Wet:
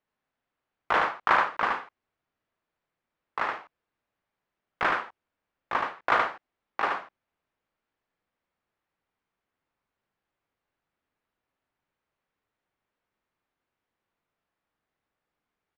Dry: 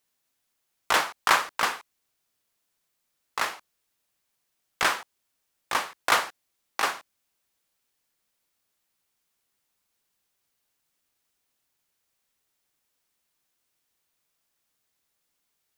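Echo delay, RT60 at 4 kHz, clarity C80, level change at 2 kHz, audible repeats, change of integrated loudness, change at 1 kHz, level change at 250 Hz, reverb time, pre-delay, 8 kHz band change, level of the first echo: 75 ms, none, none, -1.0 dB, 1, -1.5 dB, +1.0 dB, +1.5 dB, none, none, under -20 dB, -3.5 dB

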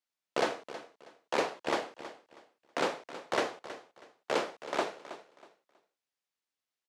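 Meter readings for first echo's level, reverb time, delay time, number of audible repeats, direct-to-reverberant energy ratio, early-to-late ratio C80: -14.0 dB, none, 0.321 s, 2, none, none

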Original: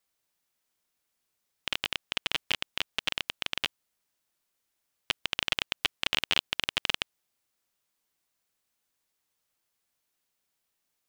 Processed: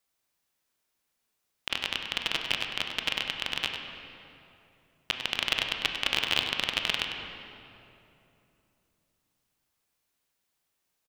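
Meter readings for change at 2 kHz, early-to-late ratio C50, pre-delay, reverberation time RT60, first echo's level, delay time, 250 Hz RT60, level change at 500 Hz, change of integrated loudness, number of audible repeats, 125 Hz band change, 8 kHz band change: +2.0 dB, 3.5 dB, 19 ms, 2.9 s, -9.5 dB, 99 ms, 3.4 s, +2.5 dB, +1.5 dB, 1, +2.5 dB, +0.5 dB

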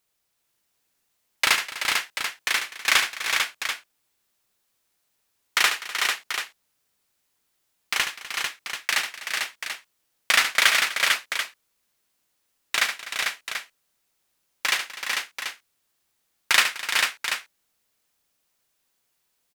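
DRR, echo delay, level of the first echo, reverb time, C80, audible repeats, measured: none, 72 ms, -8.5 dB, none, none, 5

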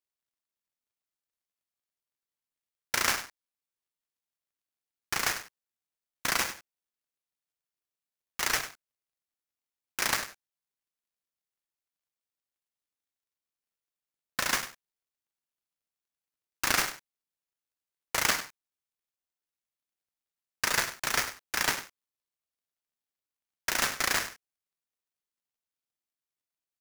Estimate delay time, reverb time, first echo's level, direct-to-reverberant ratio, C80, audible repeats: 99 ms, none, -13.0 dB, none, none, 1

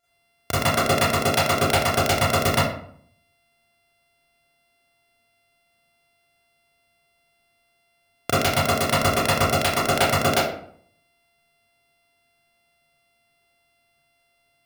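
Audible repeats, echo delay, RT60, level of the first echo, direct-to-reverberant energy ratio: none, none, 0.60 s, none, -11.5 dB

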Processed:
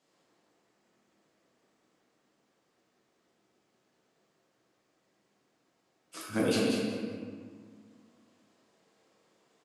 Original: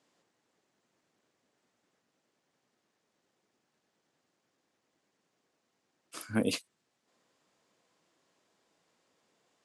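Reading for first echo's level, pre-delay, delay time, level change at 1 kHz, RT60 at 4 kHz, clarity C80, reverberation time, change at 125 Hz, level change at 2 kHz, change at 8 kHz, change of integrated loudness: -5.0 dB, 5 ms, 0.189 s, +5.5 dB, 1.2 s, -1.0 dB, 1.9 s, +3.5 dB, +3.5 dB, +2.0 dB, +1.5 dB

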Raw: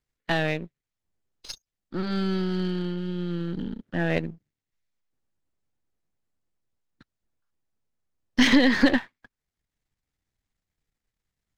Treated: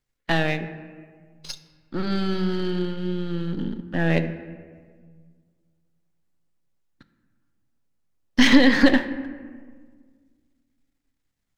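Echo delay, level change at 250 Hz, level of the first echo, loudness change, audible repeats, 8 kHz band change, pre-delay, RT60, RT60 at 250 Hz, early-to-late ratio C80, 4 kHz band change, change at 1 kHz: none, +3.5 dB, none, +3.0 dB, none, +2.5 dB, 4 ms, 1.7 s, 2.2 s, 13.0 dB, +3.0 dB, +3.0 dB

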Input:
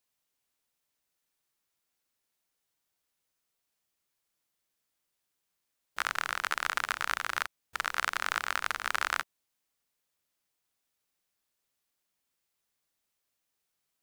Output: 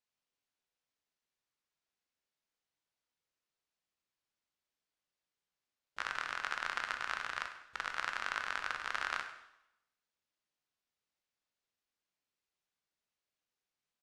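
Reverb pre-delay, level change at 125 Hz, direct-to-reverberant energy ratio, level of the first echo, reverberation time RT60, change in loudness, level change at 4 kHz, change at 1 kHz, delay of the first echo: 6 ms, -6.5 dB, 5.5 dB, -15.0 dB, 0.85 s, -6.0 dB, -6.5 dB, -6.0 dB, 99 ms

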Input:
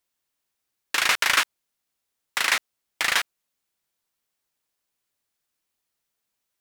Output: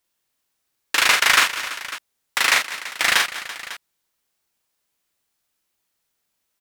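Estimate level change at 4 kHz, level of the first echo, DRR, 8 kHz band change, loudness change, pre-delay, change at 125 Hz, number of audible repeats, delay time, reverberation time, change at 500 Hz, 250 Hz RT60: +5.5 dB, -3.5 dB, none, +5.5 dB, +4.5 dB, none, n/a, 4, 43 ms, none, +5.5 dB, none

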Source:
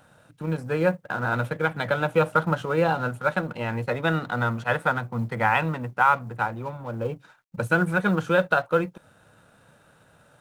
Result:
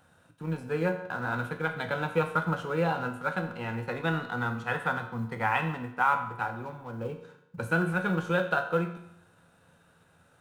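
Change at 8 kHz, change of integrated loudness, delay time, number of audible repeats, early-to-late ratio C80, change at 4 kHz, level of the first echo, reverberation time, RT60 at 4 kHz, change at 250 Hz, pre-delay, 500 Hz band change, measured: n/a, -5.5 dB, none, none, 11.5 dB, -5.0 dB, none, 0.80 s, 0.75 s, -4.5 dB, 11 ms, -6.5 dB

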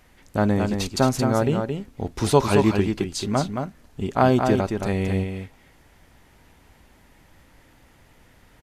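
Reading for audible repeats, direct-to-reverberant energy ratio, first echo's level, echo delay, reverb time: 1, none, -5.5 dB, 0.221 s, none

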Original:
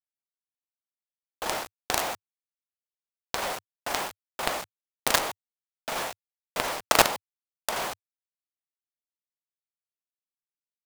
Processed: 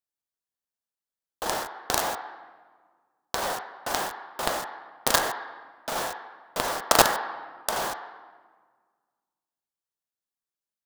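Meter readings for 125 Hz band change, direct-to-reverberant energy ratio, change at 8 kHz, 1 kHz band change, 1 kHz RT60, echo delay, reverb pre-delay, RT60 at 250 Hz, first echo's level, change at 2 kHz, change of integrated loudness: +2.0 dB, 4.5 dB, +2.0 dB, +2.5 dB, 1.5 s, none, 6 ms, 2.0 s, none, +0.5 dB, +1.5 dB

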